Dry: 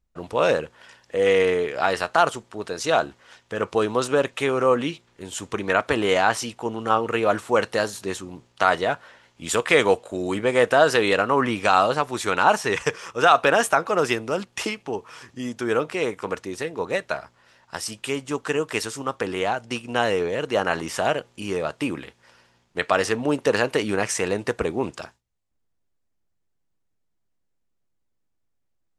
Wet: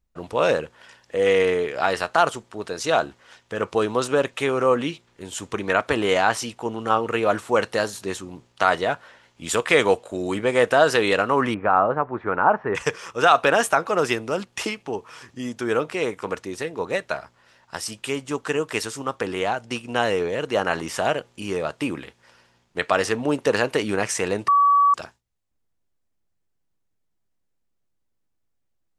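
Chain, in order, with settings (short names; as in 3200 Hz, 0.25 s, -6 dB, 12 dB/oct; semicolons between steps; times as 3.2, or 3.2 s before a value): 11.54–12.75 LPF 1600 Hz 24 dB/oct; 24.48–24.94 bleep 1140 Hz -13 dBFS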